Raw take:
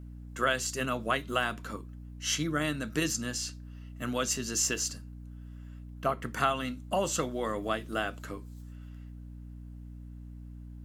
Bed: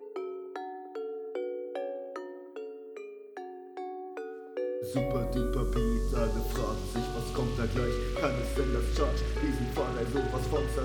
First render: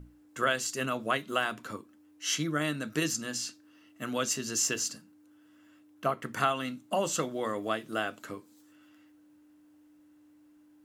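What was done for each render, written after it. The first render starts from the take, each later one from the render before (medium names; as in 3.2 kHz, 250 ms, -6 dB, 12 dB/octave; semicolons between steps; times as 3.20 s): hum notches 60/120/180/240 Hz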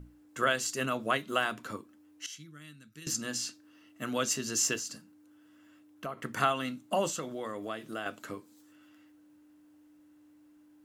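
2.26–3.07 s: amplifier tone stack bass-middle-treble 6-0-2; 4.76–6.18 s: compression 3:1, threshold -36 dBFS; 7.10–8.06 s: compression 2:1, threshold -37 dBFS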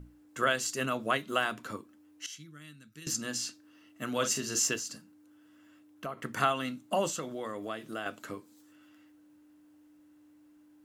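4.10–4.59 s: doubling 42 ms -8 dB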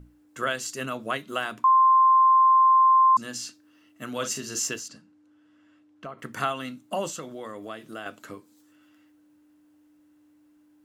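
1.64–3.17 s: bleep 1.05 kHz -14 dBFS; 4.88–6.19 s: distance through air 80 m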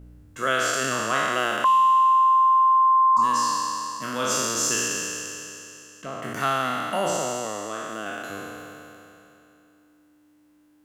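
spectral sustain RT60 2.94 s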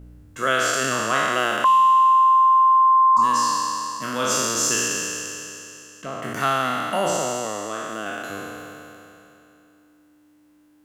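trim +2.5 dB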